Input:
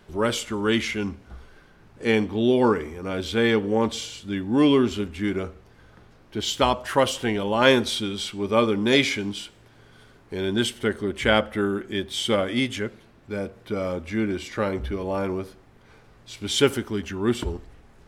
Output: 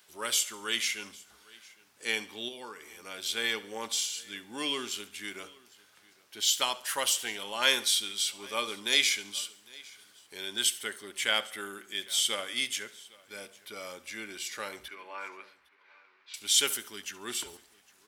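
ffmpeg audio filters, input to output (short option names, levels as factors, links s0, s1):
-filter_complex "[0:a]asettb=1/sr,asplit=3[s0][s1][s2];[s0]atrim=end=14.884[s3];[s1]atrim=start=14.88:end=16.34,asetpts=PTS-STARTPTS,afade=t=in:d=0.004:c=qsin,afade=t=out:st=1.456:d=0.004:c=qsin,highpass=410,equalizer=f=500:t=q:w=4:g=-5,equalizer=f=710:t=q:w=4:g=-7,equalizer=f=1000:t=q:w=4:g=5,equalizer=f=1500:t=q:w=4:g=4,equalizer=f=2300:t=q:w=4:g=5,equalizer=f=3300:t=q:w=4:g=-6,lowpass=f=3500:w=0.5412,lowpass=f=3500:w=1.3066[s4];[s2]atrim=start=16.336[s5];[s3][s4]acrossfade=d=0.004:c1=hsin:c2=qsin[s6];[s6][s5]acrossfade=d=0.004:c1=qsin:c2=hsin,asplit=2[s7][s8];[s8]aecho=0:1:806:0.0668[s9];[s7][s9]amix=inputs=2:normalize=0,asettb=1/sr,asplit=3[s10][s11][s12];[s10]atrim=end=2.484[s13];[s11]atrim=start=2.48:end=3.27,asetpts=PTS-STARTPTS,afade=t=in:d=0.004:c=qsin,afade=t=out:st=0.786:d=0.004:c=qsin,acompressor=threshold=0.0562:ratio=6[s14];[s12]atrim=start=3.266[s15];[s13][s14]acrossfade=d=0.004:c1=hsin:c2=qsin[s16];[s16][s15]acrossfade=d=0.004:c1=qsin:c2=hsin,aderivative,asplit=2[s17][s18];[s18]aecho=0:1:70|140|210|280:0.106|0.0487|0.0224|0.0103[s19];[s17][s19]amix=inputs=2:normalize=0,volume=2"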